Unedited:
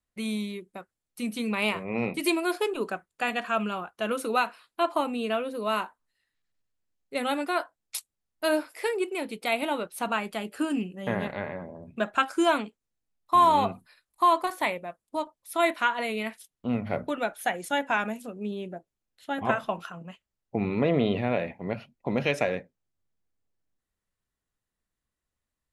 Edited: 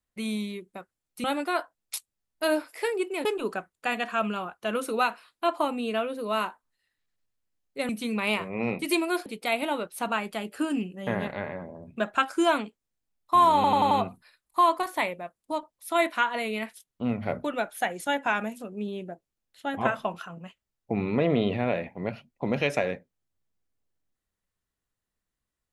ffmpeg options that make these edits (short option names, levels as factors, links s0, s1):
-filter_complex "[0:a]asplit=9[s0][s1][s2][s3][s4][s5][s6][s7][s8];[s0]atrim=end=1.242[s9];[s1]atrim=start=7.248:end=9.262[s10];[s2]atrim=start=2.608:end=7.252[s11];[s3]atrim=start=1.238:end=2.612[s12];[s4]atrim=start=9.258:end=13.642[s13];[s5]atrim=start=13.548:end=13.642[s14];[s6]atrim=start=13.548:end=13.642[s15];[s7]atrim=start=13.548:end=13.642[s16];[s8]atrim=start=13.548[s17];[s9][s10]acrossfade=d=0.004:c1=hsin:c2=hsin[s18];[s18][s11]acrossfade=d=0.004:c1=hsin:c2=hsin[s19];[s19][s12]acrossfade=d=0.004:c1=hsin:c2=hsin[s20];[s20][s13]acrossfade=d=0.004:c1=hsin:c2=hsin[s21];[s21][s14]acrossfade=d=0.004:c1=hsin:c2=hsin[s22];[s22][s15]acrossfade=d=0.004:c1=hsin:c2=hsin[s23];[s23][s16]acrossfade=d=0.004:c1=hsin:c2=hsin[s24];[s24][s17]acrossfade=d=0.004:c1=hsin:c2=hsin"